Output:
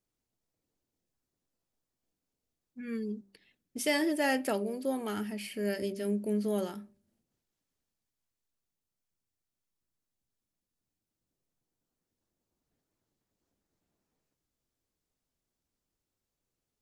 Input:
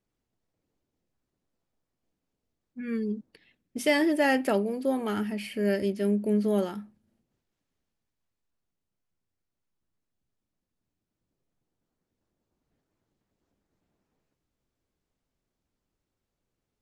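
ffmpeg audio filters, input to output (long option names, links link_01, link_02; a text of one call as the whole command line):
ffmpeg -i in.wav -af "bass=frequency=250:gain=-1,treble=frequency=4000:gain=7,bandreject=frequency=197.2:width_type=h:width=4,bandreject=frequency=394.4:width_type=h:width=4,bandreject=frequency=591.6:width_type=h:width=4,volume=-5dB" out.wav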